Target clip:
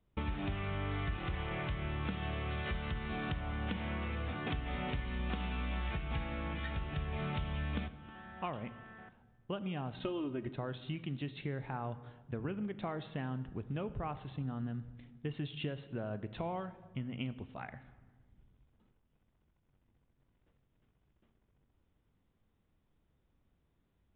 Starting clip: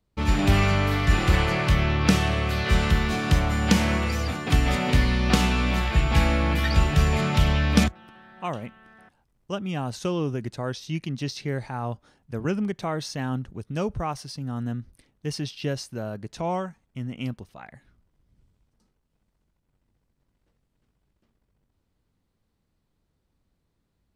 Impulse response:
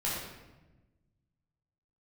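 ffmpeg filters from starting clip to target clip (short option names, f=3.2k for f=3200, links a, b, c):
-filter_complex "[0:a]asettb=1/sr,asplit=3[a][b][c];[a]atrim=end=9.944[d];[b]atrim=start=9.94:end=10.47,asetpts=PTS-STARTPTS,afade=t=in:d=0.004:c=qsin,afade=t=out:st=0.526:d=0.004:c=qsin,aecho=1:1:3.2:0.91,atrim=end_sample=23373[e];[c]atrim=start=10.466[f];[d][e]acrossfade=d=0.004:c1=hsin:c2=qsin[g];[g][f]acrossfade=d=0.004:c1=qsin:c2=hsin,acompressor=threshold=-33dB:ratio=10,asplit=2[h][i];[1:a]atrim=start_sample=2205,asetrate=33516,aresample=44100[j];[i][j]afir=irnorm=-1:irlink=0,volume=-20.5dB[k];[h][k]amix=inputs=2:normalize=0,aresample=8000,aresample=44100,volume=-2.5dB"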